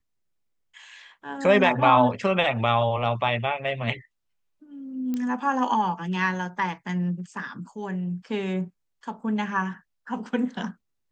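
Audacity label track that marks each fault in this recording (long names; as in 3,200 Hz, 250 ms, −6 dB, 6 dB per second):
5.140000	5.140000	click −18 dBFS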